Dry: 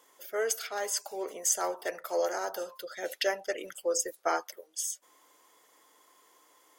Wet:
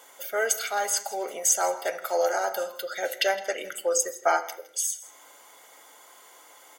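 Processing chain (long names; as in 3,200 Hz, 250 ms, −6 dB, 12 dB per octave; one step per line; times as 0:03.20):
low-shelf EQ 170 Hz −10 dB
notch filter 5,200 Hz, Q 12
comb filter 1.4 ms, depth 47%
in parallel at +2.5 dB: downward compressor, threshold −47 dBFS, peak gain reduction 22.5 dB
on the sum: single-tap delay 163 ms −18.5 dB
on a send at −7.5 dB: convolution reverb RT60 0.65 s, pre-delay 3 ms
on the sum: level +3.5 dB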